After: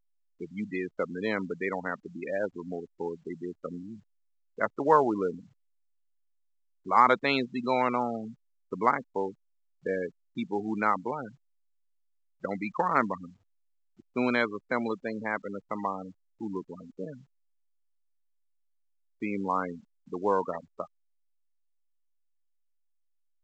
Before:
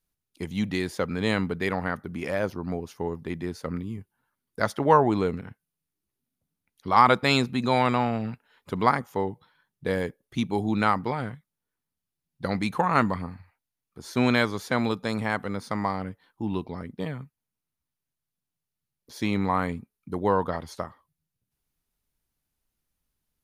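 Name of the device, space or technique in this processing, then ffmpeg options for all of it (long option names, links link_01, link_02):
telephone: -af "afftfilt=real='re*gte(hypot(re,im),0.0562)':imag='im*gte(hypot(re,im),0.0562)':win_size=1024:overlap=0.75,highpass=260,lowpass=3200,equalizer=frequency=760:width_type=o:width=0.24:gain=-3.5,volume=-2dB" -ar 16000 -c:a pcm_alaw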